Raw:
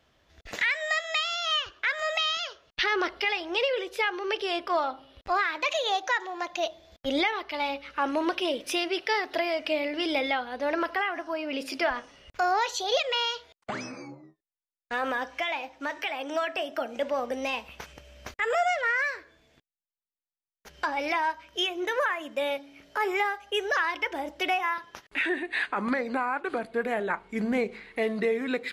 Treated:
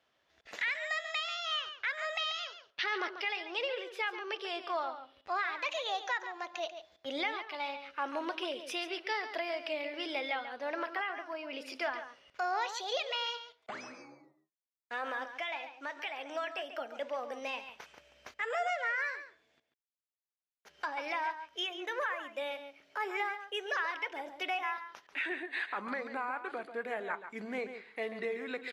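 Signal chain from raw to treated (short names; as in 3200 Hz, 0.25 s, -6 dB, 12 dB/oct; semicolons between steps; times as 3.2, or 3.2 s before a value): HPF 540 Hz 6 dB/oct; high shelf 7400 Hz -9 dB; outdoor echo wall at 24 m, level -10 dB; gain -6.5 dB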